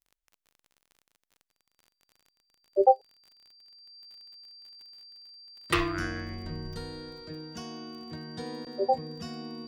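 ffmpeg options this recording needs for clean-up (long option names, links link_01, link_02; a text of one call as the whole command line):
ffmpeg -i in.wav -af "adeclick=threshold=4,bandreject=frequency=4700:width=30" out.wav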